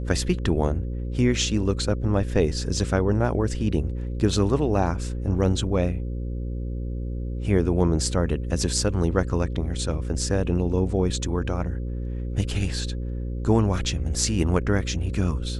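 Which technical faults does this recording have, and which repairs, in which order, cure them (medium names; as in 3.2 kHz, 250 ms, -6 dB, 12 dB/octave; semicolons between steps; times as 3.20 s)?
buzz 60 Hz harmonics 9 -29 dBFS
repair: de-hum 60 Hz, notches 9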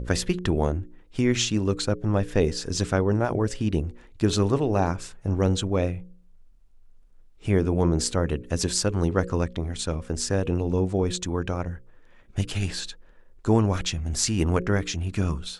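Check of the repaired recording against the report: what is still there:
nothing left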